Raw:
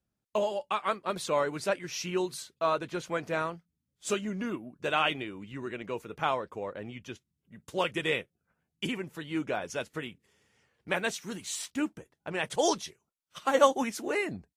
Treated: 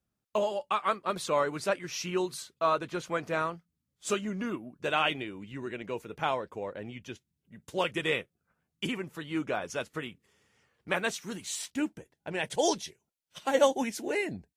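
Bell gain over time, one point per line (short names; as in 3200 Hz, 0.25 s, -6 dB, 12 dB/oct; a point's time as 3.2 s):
bell 1200 Hz 0.3 oct
4.38 s +3.5 dB
5.36 s -4.5 dB
7.71 s -4.5 dB
8.11 s +4 dB
11.05 s +4 dB
11.67 s -5.5 dB
12.79 s -14 dB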